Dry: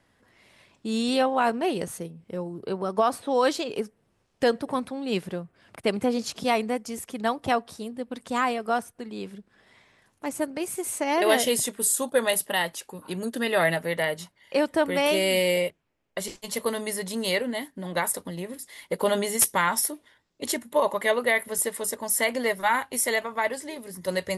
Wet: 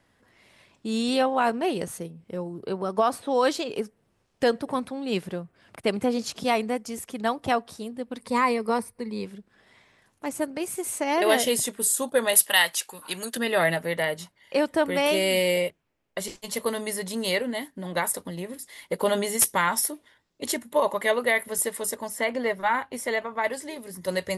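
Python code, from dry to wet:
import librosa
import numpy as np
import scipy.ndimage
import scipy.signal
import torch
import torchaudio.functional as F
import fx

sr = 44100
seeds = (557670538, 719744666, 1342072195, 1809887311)

y = fx.ripple_eq(x, sr, per_octave=0.91, db=11, at=(8.21, 9.25))
y = fx.tilt_shelf(y, sr, db=-9.5, hz=740.0, at=(12.35, 13.37))
y = fx.lowpass(y, sr, hz=2300.0, slope=6, at=(22.08, 23.44))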